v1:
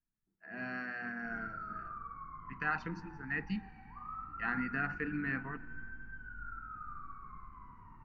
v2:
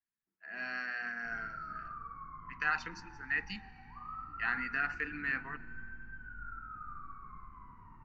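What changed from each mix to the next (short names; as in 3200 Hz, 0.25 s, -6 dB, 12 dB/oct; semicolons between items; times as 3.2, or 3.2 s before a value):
speech: add tilt +4.5 dB/oct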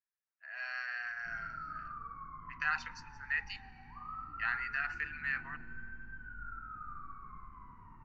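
speech: add Bessel high-pass 950 Hz, order 8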